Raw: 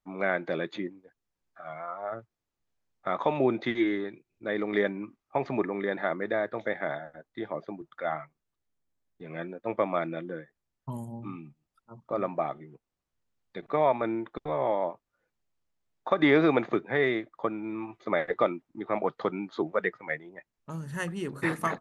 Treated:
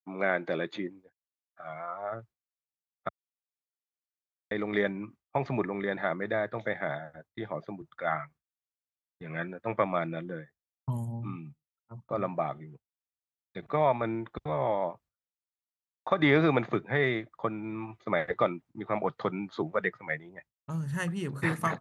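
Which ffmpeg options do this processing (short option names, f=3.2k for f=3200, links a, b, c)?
-filter_complex "[0:a]asettb=1/sr,asplit=3[a][b][c];[a]atrim=end=8.074[d];[b]atrim=start=8.07:end=9.84,asetpts=PTS-STARTPTS,afade=t=in:d=0.004:c=qsin,afade=t=out:st=1.766:d=0.004:c=qsin,equalizer=f=1.6k:t=o:w=0.99:g=7[e];[c]atrim=start=9.836[f];[d][e]acrossfade=d=0.004:c1=hsin:c2=qsin[g];[g][f]acrossfade=d=0.004:c1=qsin:c2=hsin,asplit=3[h][i][j];[h]atrim=end=3.09,asetpts=PTS-STARTPTS,afade=t=out:st=3.086:d=0.004:c=hsin[k];[i]atrim=start=3.09:end=4.51,asetpts=PTS-STARTPTS,volume=0[l];[j]atrim=start=4.51,asetpts=PTS-STARTPTS,afade=t=in:d=0.004:c=hsin[m];[k][l][m]concat=n=3:v=0:a=1,agate=range=-33dB:threshold=-48dB:ratio=3:detection=peak,asubboost=boost=4.5:cutoff=130,highpass=78"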